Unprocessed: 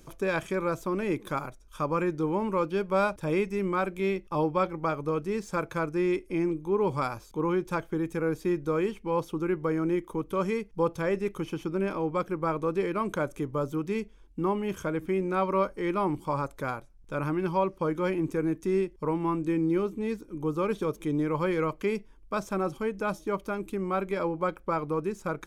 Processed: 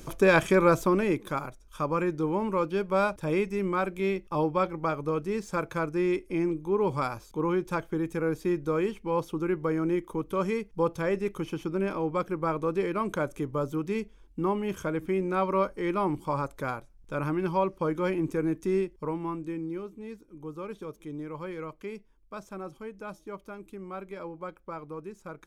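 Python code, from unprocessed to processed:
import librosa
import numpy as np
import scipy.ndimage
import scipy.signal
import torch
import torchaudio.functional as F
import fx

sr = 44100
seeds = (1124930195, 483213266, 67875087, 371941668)

y = fx.gain(x, sr, db=fx.line((0.81, 8.0), (1.23, 0.0), (18.72, 0.0), (19.83, -10.0)))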